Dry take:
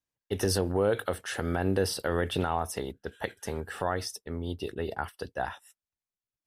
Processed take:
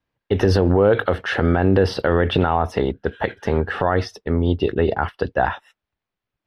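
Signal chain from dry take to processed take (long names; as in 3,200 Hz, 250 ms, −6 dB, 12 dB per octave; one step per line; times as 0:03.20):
high-frequency loss of the air 300 metres
boost into a limiter +20.5 dB
level −4.5 dB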